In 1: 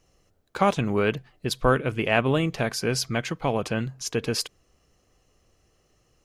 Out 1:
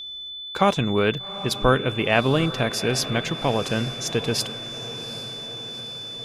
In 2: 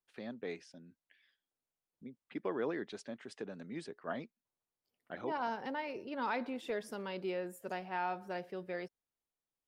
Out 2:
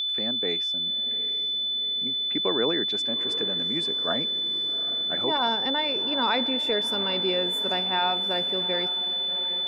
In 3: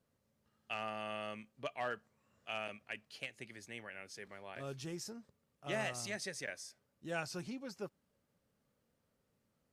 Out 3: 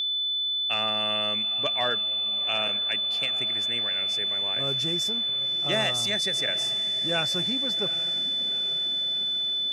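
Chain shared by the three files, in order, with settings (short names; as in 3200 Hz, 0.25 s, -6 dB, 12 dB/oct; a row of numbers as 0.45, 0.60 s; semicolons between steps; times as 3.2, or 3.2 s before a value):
diffused feedback echo 0.796 s, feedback 62%, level -14 dB; whine 3500 Hz -35 dBFS; match loudness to -24 LUFS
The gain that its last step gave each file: +2.0, +10.0, +10.5 dB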